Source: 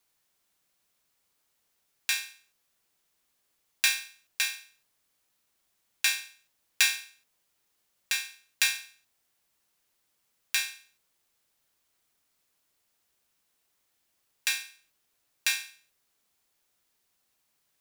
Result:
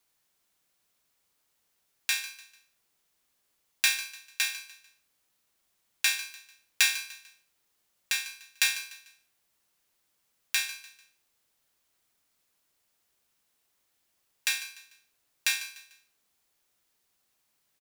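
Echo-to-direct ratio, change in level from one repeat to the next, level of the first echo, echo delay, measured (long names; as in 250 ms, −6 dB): −14.5 dB, −9.0 dB, −15.0 dB, 148 ms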